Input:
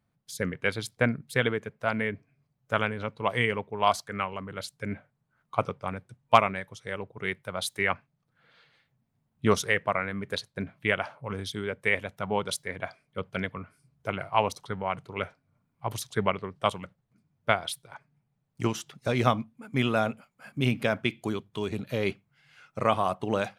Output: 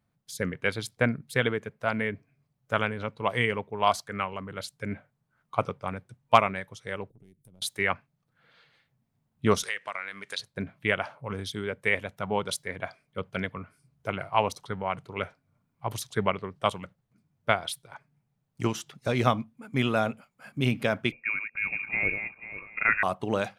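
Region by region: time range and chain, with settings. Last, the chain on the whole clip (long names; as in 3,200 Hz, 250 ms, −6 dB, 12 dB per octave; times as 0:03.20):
0:07.10–0:07.62: gain on one half-wave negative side −3 dB + drawn EQ curve 290 Hz 0 dB, 1,100 Hz −29 dB, 1,800 Hz −28 dB, 11,000 Hz +4 dB + downward compressor 8 to 1, threshold −51 dBFS
0:09.63–0:10.39: meter weighting curve ITU-R 468 + downward compressor 2 to 1, threshold −36 dBFS
0:21.12–0:23.03: feedback delay that plays each chunk backwards 246 ms, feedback 43%, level −6.5 dB + voice inversion scrambler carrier 2,600 Hz
whole clip: no processing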